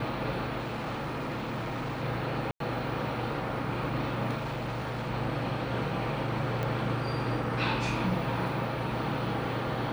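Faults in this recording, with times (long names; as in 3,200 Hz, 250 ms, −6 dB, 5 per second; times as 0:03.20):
0:00.58–0:02.03: clipping −30.5 dBFS
0:02.51–0:02.60: drop-out 93 ms
0:04.37–0:05.08: clipping −30.5 dBFS
0:06.63: click −20 dBFS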